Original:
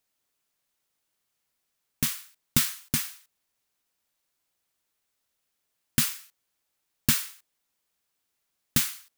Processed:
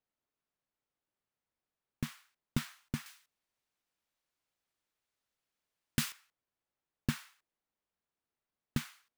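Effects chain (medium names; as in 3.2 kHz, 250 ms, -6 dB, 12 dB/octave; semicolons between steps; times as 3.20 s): low-pass 1.1 kHz 6 dB/octave, from 3.06 s 3.9 kHz, from 6.12 s 1.1 kHz; trim -5 dB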